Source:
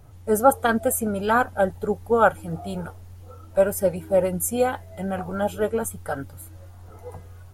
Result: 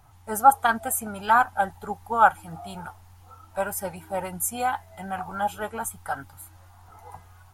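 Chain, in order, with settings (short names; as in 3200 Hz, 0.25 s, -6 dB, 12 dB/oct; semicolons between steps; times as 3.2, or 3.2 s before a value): resonant low shelf 660 Hz -7.5 dB, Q 3; gain -1 dB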